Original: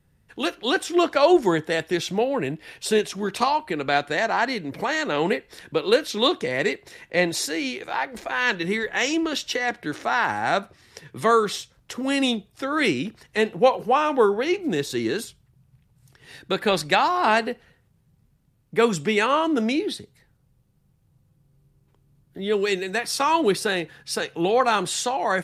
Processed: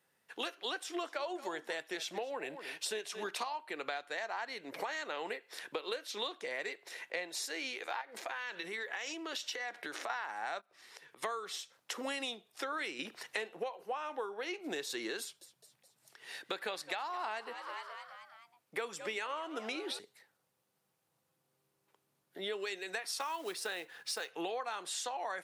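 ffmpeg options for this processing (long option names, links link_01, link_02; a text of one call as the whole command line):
ffmpeg -i in.wav -filter_complex "[0:a]asettb=1/sr,asplit=3[link_01][link_02][link_03];[link_01]atrim=end=0.774[link_04];[link_02]atrim=start=0.77:end=3.24,asetpts=PTS-STARTPTS,afade=type=in:duration=0.004:curve=qsin,afade=type=out:start_time=2.466:duration=0.004:curve=qsin,aecho=1:1:225:0.15,atrim=end_sample=108927[link_05];[link_03]atrim=start=3.236[link_06];[link_04][link_05]acrossfade=duration=0.004:curve1=hsin:curve2=qsin[link_07];[link_07][link_06]acrossfade=duration=0.004:curve1=qsin:curve2=hsin,asettb=1/sr,asplit=3[link_08][link_09][link_10];[link_08]atrim=end=8.014[link_11];[link_09]atrim=start=8.01:end=10.1,asetpts=PTS-STARTPTS,afade=type=in:duration=0.004:curve=qsin,afade=type=out:start_time=2.086:duration=0.004:curve=qsin,acompressor=threshold=-30dB:ratio=10:attack=3.2:release=140:knee=1:detection=peak[link_12];[link_10]atrim=start=10.096[link_13];[link_11][link_12]acrossfade=duration=0.004:curve1=hsin:curve2=qsin[link_14];[link_14][link_13]acrossfade=duration=0.004:curve1=qsin:curve2=hsin,asplit=3[link_15][link_16][link_17];[link_15]afade=type=out:start_time=10.6:duration=0.02[link_18];[link_16]acompressor=threshold=-47dB:ratio=8:attack=3.2:release=140:knee=1:detection=peak,afade=type=in:start_time=10.6:duration=0.02,afade=type=out:start_time=11.22:duration=0.02[link_19];[link_17]afade=type=in:start_time=11.22:duration=0.02[link_20];[link_18][link_19][link_20]amix=inputs=3:normalize=0,asettb=1/sr,asplit=3[link_21][link_22][link_23];[link_21]atrim=end=12.994[link_24];[link_22]atrim=start=12.99:end=13.64,asetpts=PTS-STARTPTS,afade=type=in:duration=0.004:curve=qsin,afade=type=out:start_time=0.646:duration=0.004:curve=qsin,acontrast=64[link_25];[link_23]atrim=start=13.636[link_26];[link_24][link_25]acrossfade=duration=0.004:curve1=hsin:curve2=qsin[link_27];[link_27][link_26]acrossfade=duration=0.004:curve1=qsin:curve2=hsin,asettb=1/sr,asplit=3[link_28][link_29][link_30];[link_28]atrim=end=15.204[link_31];[link_29]atrim=start=15.2:end=19.99,asetpts=PTS-STARTPTS,afade=type=in:duration=0.004:curve=qsin,afade=type=out:start_time=4.786:duration=0.004:curve=qsin,asplit=6[link_32][link_33][link_34][link_35][link_36][link_37];[link_33]adelay=211,afreqshift=96,volume=-18.5dB[link_38];[link_34]adelay=422,afreqshift=192,volume=-23.4dB[link_39];[link_35]adelay=633,afreqshift=288,volume=-28.3dB[link_40];[link_36]adelay=844,afreqshift=384,volume=-33.1dB[link_41];[link_37]adelay=1055,afreqshift=480,volume=-38dB[link_42];[link_32][link_38][link_39][link_40][link_41][link_42]amix=inputs=6:normalize=0,atrim=end_sample=211239[link_43];[link_30]atrim=start=19.986[link_44];[link_31][link_43]acrossfade=duration=0.004:curve1=hsin:curve2=qsin[link_45];[link_45][link_44]acrossfade=duration=0.004:curve1=qsin:curve2=hsin,asettb=1/sr,asplit=3[link_46][link_47][link_48];[link_46]atrim=end=23.204[link_49];[link_47]atrim=start=23.2:end=24.3,asetpts=PTS-STARTPTS,afade=type=in:duration=0.004:curve=qsin,afade=type=out:start_time=1.096:duration=0.004:curve=qsin,acrusher=bits=5:mode=log:mix=0:aa=0.000001[link_50];[link_48]atrim=start=24.296[link_51];[link_49][link_50]acrossfade=duration=0.004:curve1=hsin:curve2=qsin[link_52];[link_52][link_51]acrossfade=duration=0.004:curve1=qsin:curve2=hsin,highpass=550,acompressor=threshold=-34dB:ratio=12,volume=-1.5dB" out.wav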